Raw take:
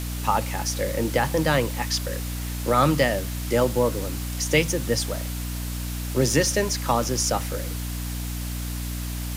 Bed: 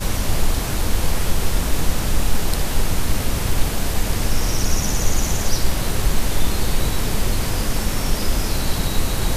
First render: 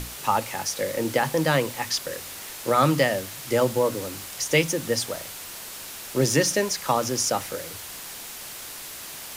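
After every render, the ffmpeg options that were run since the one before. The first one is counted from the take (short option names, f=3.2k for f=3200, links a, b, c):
-af "bandreject=f=60:t=h:w=6,bandreject=f=120:t=h:w=6,bandreject=f=180:t=h:w=6,bandreject=f=240:t=h:w=6,bandreject=f=300:t=h:w=6"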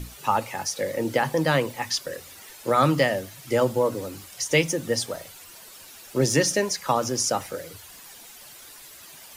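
-af "afftdn=nr=11:nf=-39"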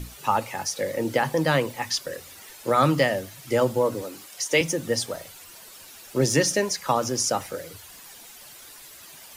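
-filter_complex "[0:a]asettb=1/sr,asplit=3[a][b][c];[a]atrim=end=4.024[d];[b]atrim=start=4.02:end=4.61,asetpts=PTS-STARTPTS,afade=t=in:d=0.004:c=qsin,afade=t=out:st=0.586:d=0.004:c=qsin,highpass=250[e];[c]atrim=start=4.606[f];[d][e]acrossfade=d=0.004:c1=hsin:c2=qsin[g];[g][f]acrossfade=d=0.004:c1=qsin:c2=hsin"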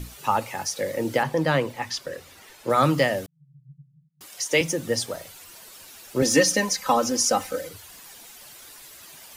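-filter_complex "[0:a]asettb=1/sr,asplit=3[a][b][c];[a]atrim=end=1.234[d];[b]atrim=start=1.23:end=2.7,asetpts=PTS-STARTPTS,afade=t=in:d=0.004:c=qsin,afade=t=out:st=1.466:d=0.004:c=qsin,highshelf=f=5.7k:g=-9.5[e];[c]atrim=start=2.696[f];[d][e]acrossfade=d=0.004:c1=hsin:c2=qsin[g];[g][f]acrossfade=d=0.004:c1=qsin:c2=hsin,asettb=1/sr,asplit=3[h][i][j];[h]atrim=end=3.264[k];[i]atrim=start=3.26:end=4.21,asetpts=PTS-STARTPTS,afade=t=in:d=0.004:c=qsin,afade=t=out:st=0.946:d=0.004:c=qsin,asuperpass=centerf=150:order=8:qfactor=5.4[l];[j]atrim=start=4.206[m];[k][l]acrossfade=d=0.004:c1=hsin:c2=qsin[n];[n][m]acrossfade=d=0.004:c1=qsin:c2=hsin,asettb=1/sr,asplit=3[o][p][q];[o]atrim=end=6.224[r];[p]atrim=start=6.22:end=7.69,asetpts=PTS-STARTPTS,afade=t=in:d=0.004:c=qsin,afade=t=out:st=1.466:d=0.004:c=qsin,aecho=1:1:3.9:0.86,atrim=end_sample=64827[s];[q]atrim=start=7.686[t];[r][s]acrossfade=d=0.004:c1=hsin:c2=qsin[u];[u][t]acrossfade=d=0.004:c1=qsin:c2=hsin"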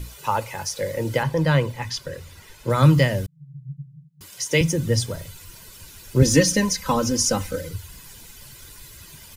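-af "asubboost=boost=8:cutoff=200,aecho=1:1:2:0.44"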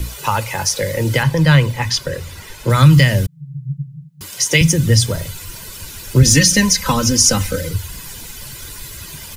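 -filter_complex "[0:a]acrossover=split=190|1400[a][b][c];[b]acompressor=threshold=-31dB:ratio=6[d];[a][d][c]amix=inputs=3:normalize=0,alimiter=level_in=11dB:limit=-1dB:release=50:level=0:latency=1"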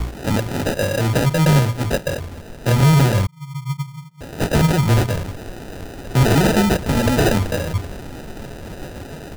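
-af "acrusher=samples=40:mix=1:aa=0.000001,asoftclip=type=tanh:threshold=-8.5dB"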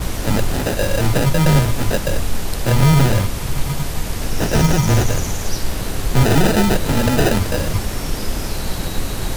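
-filter_complex "[1:a]volume=-2.5dB[a];[0:a][a]amix=inputs=2:normalize=0"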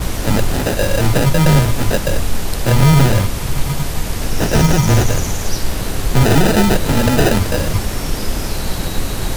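-af "volume=2.5dB,alimiter=limit=-2dB:level=0:latency=1"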